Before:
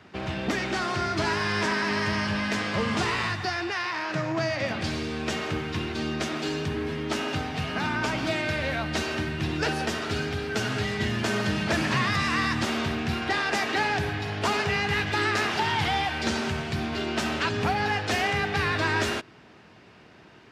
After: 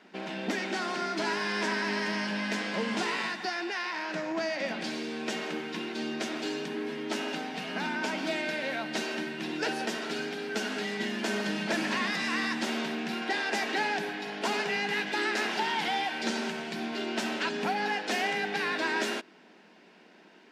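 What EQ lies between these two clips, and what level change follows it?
linear-phase brick-wall high-pass 170 Hz
notch filter 1,200 Hz, Q 6.9
−3.5 dB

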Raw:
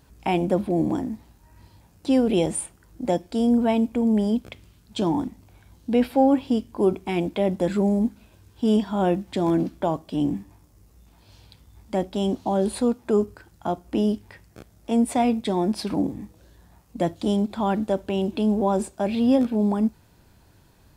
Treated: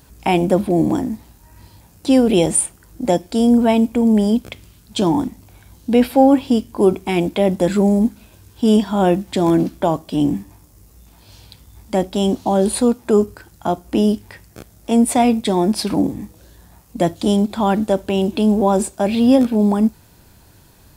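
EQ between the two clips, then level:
high-shelf EQ 5,900 Hz +8 dB
+6.5 dB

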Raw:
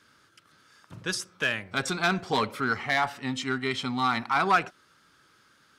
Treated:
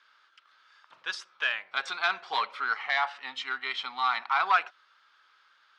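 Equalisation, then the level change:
Chebyshev band-pass filter 900–3,800 Hz, order 2
0.0 dB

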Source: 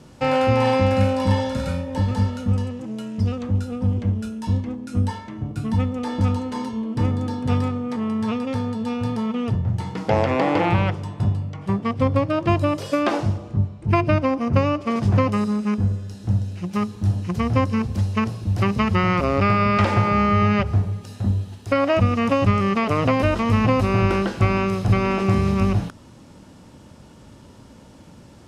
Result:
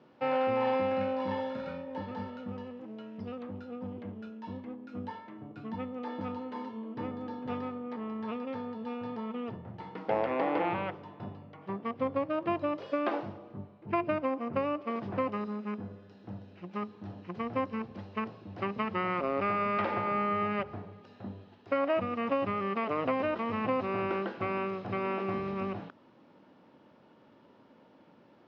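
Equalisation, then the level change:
high-pass filter 300 Hz 12 dB per octave
low-pass filter 7,100 Hz 24 dB per octave
high-frequency loss of the air 340 metres
−7.5 dB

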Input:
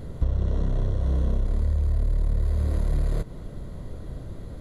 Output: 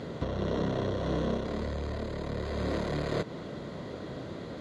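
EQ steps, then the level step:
high-pass filter 220 Hz 12 dB per octave
high-frequency loss of the air 160 metres
high-shelf EQ 2,100 Hz +9.5 dB
+6.0 dB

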